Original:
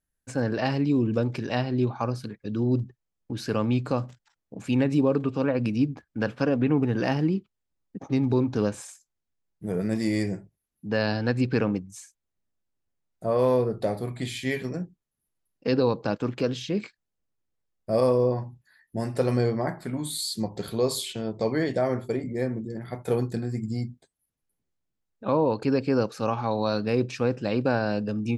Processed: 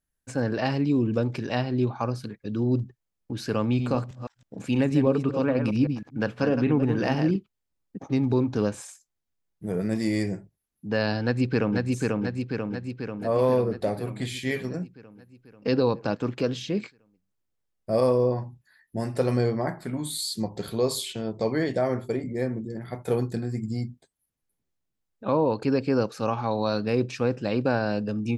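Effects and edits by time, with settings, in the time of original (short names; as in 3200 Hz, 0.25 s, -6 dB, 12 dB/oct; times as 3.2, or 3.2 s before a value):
3.63–7.36 reverse delay 0.16 s, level -7.5 dB
11.23–11.92 echo throw 0.49 s, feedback 65%, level -2 dB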